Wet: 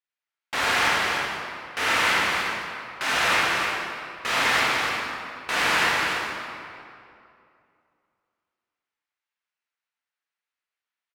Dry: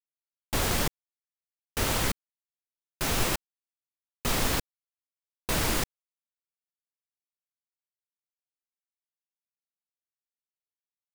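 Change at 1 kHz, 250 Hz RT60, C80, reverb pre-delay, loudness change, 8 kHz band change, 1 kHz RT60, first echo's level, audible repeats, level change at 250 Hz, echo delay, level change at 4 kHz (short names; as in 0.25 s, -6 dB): +11.5 dB, 2.6 s, -2.5 dB, 24 ms, +5.5 dB, -0.5 dB, 2.5 s, -5.5 dB, 1, -1.0 dB, 0.296 s, +8.0 dB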